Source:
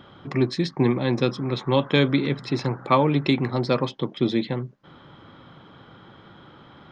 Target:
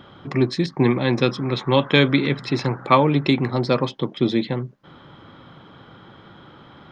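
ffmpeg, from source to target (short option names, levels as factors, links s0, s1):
-filter_complex "[0:a]asettb=1/sr,asplit=3[s0][s1][s2];[s0]atrim=end=0.664[s3];[s1]atrim=start=0.66:end=3,asetpts=PTS-STARTPTS,afade=t=in:d=0.004:c=qsin,afade=t=out:st=2.336:d=0.004:c=qsin,adynamicequalizer=threshold=0.0178:dfrequency=2200:dqfactor=0.71:tfrequency=2200:tqfactor=0.71:attack=5:release=100:ratio=0.375:range=2:mode=boostabove:tftype=bell[s4];[s2]atrim=start=2.996[s5];[s3][s4]acrossfade=d=0.004:c1=hsin:c2=qsin[s6];[s6][s5]acrossfade=d=0.004:c1=qsin:c2=hsin,volume=1.33"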